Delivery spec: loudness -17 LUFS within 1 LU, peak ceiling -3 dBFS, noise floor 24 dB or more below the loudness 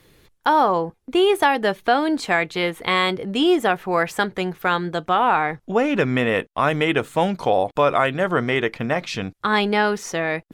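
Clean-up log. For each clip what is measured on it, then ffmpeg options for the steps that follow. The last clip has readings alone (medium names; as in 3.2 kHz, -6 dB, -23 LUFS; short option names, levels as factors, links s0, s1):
loudness -20.5 LUFS; peak level -5.0 dBFS; loudness target -17.0 LUFS
-> -af "volume=1.5,alimiter=limit=0.708:level=0:latency=1"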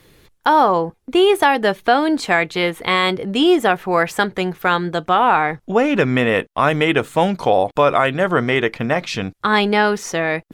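loudness -17.0 LUFS; peak level -3.0 dBFS; noise floor -57 dBFS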